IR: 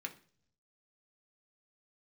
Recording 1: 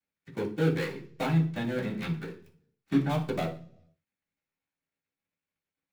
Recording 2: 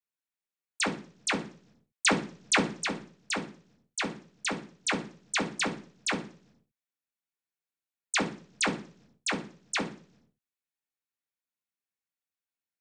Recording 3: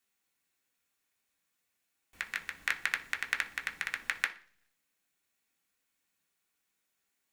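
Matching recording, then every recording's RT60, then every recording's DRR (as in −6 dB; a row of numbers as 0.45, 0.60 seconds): 3; 0.50 s, 0.50 s, non-exponential decay; −9.5, −2.0, 2.0 decibels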